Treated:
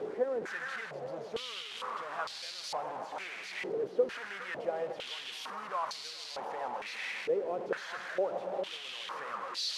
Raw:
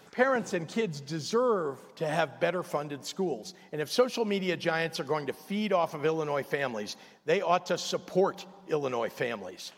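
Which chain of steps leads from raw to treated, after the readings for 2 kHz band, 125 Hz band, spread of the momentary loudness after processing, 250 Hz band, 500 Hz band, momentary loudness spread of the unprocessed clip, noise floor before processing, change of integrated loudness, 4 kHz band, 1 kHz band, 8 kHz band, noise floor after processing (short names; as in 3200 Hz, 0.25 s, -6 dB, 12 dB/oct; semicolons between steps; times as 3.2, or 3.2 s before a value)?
-5.0 dB, -19.5 dB, 7 LU, -14.5 dB, -7.0 dB, 10 LU, -54 dBFS, -6.5 dB, -1.0 dB, -5.5 dB, -6.0 dB, -45 dBFS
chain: delta modulation 64 kbps, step -23.5 dBFS; split-band echo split 1800 Hz, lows 0.413 s, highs 0.157 s, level -8 dB; stepped band-pass 2.2 Hz 430–4400 Hz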